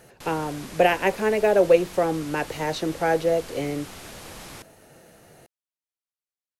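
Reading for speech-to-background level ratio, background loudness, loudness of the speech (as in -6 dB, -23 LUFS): 17.0 dB, -40.5 LUFS, -23.5 LUFS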